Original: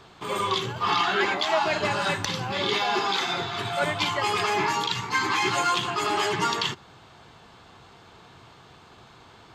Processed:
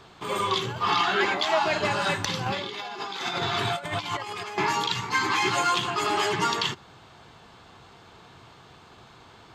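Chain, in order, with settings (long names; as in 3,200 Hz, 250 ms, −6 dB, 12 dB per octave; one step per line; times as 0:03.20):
0:02.46–0:04.58: compressor whose output falls as the input rises −30 dBFS, ratio −0.5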